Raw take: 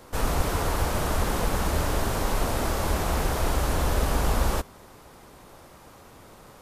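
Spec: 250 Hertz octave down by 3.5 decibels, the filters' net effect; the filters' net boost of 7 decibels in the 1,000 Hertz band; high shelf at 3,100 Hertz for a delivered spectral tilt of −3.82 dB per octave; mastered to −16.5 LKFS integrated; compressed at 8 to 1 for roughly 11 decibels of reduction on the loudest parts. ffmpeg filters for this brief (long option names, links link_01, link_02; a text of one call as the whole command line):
ffmpeg -i in.wav -af "equalizer=frequency=250:width_type=o:gain=-5.5,equalizer=frequency=1000:width_type=o:gain=8.5,highshelf=frequency=3100:gain=4,acompressor=threshold=-29dB:ratio=8,volume=17dB" out.wav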